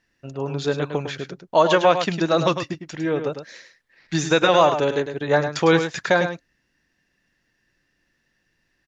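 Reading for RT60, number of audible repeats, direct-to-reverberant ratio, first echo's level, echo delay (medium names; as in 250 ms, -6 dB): no reverb, 1, no reverb, -8.5 dB, 104 ms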